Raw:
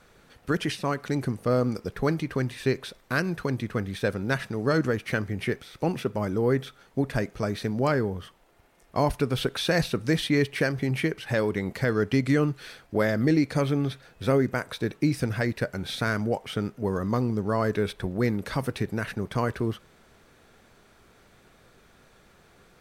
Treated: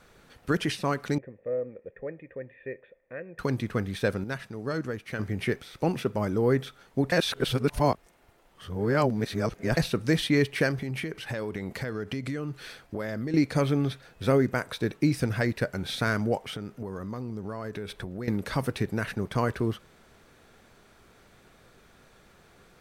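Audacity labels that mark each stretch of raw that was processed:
1.180000	3.390000	cascade formant filter e
4.240000	5.190000	gain -7.5 dB
7.120000	9.770000	reverse
10.750000	13.340000	compression, threshold -29 dBFS
16.450000	18.280000	compression, threshold -32 dBFS

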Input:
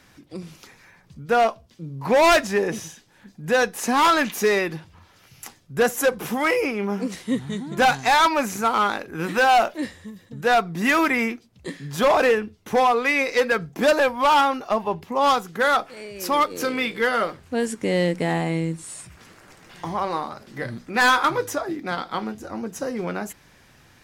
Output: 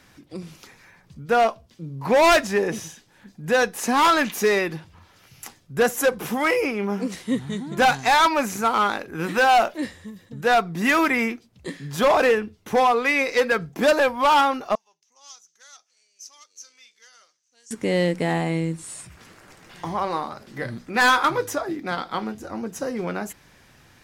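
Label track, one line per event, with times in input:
14.750000	17.710000	band-pass filter 6.1 kHz, Q 9.8

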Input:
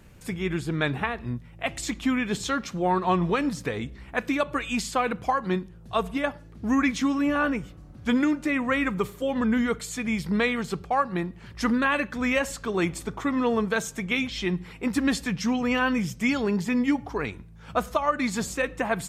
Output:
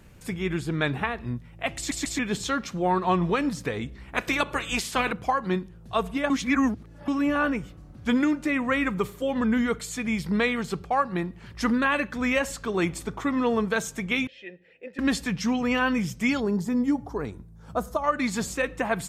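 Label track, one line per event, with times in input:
1.770000	1.770000	stutter in place 0.14 s, 3 plays
4.130000	5.110000	spectral peaks clipped ceiling under each frame's peak by 15 dB
6.300000	7.080000	reverse
10.050000	10.800000	short-mantissa float mantissa of 8-bit
14.270000	14.990000	vowel filter e
16.400000	18.040000	peaking EQ 2.5 kHz -15 dB 1.4 oct

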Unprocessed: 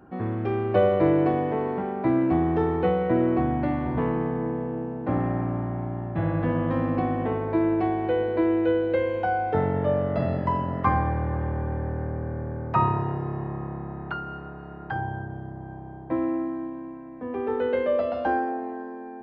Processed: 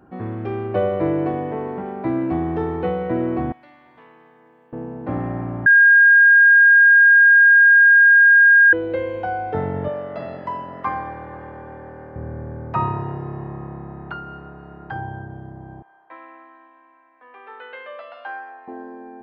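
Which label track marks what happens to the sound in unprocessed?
0.670000	1.860000	distance through air 110 m
3.520000	4.730000	differentiator
5.660000	8.730000	bleep 1.62 kHz -7.5 dBFS
9.880000	12.160000	high-pass 560 Hz 6 dB/octave
15.820000	18.680000	Butterworth band-pass 2.1 kHz, Q 0.7

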